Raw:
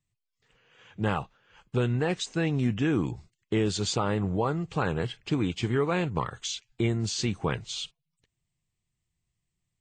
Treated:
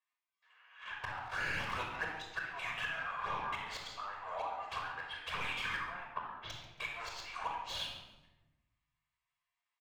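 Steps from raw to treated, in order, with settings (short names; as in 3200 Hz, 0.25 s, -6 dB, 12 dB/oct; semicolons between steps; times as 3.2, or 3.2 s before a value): 1.03–1.96 zero-crossing step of -36 dBFS; steep high-pass 790 Hz 36 dB/oct; gate -55 dBFS, range -12 dB; high shelf 5600 Hz -10 dB; 2.86–3.55 reverb throw, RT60 0.97 s, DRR -11.5 dB; flipped gate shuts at -26 dBFS, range -25 dB; overdrive pedal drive 23 dB, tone 1100 Hz, clips at -30 dBFS; envelope flanger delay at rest 11.6 ms, full sweep at -37.5 dBFS; 5.85–6.5 air absorption 310 m; feedback echo 0.138 s, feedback 34%, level -17 dB; shoebox room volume 4000 m³, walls furnished, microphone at 5.5 m; gain +4 dB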